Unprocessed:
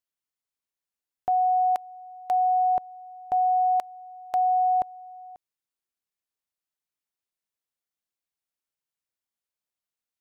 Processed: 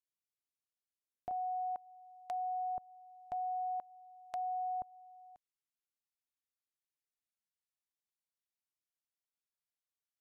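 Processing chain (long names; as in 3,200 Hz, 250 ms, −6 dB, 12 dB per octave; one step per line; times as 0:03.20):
treble cut that deepens with the level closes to 840 Hz, closed at −24.5 dBFS
parametric band 1,000 Hz −8 dB 1.9 octaves, from 0:01.31 470 Hz
level −8 dB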